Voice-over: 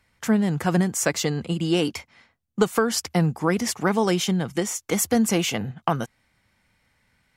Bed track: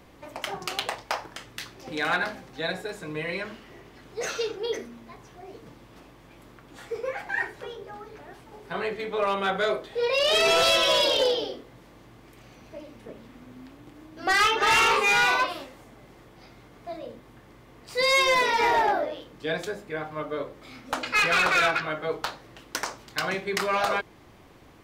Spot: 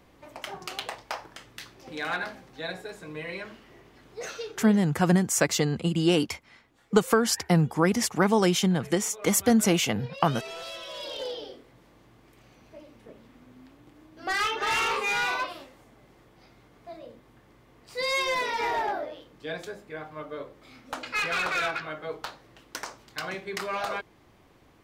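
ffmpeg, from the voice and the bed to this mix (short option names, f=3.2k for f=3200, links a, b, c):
-filter_complex "[0:a]adelay=4350,volume=-0.5dB[a];[1:a]volume=7.5dB,afade=t=out:st=4.14:d=0.83:silence=0.211349,afade=t=in:st=10.92:d=0.86:silence=0.237137[b];[a][b]amix=inputs=2:normalize=0"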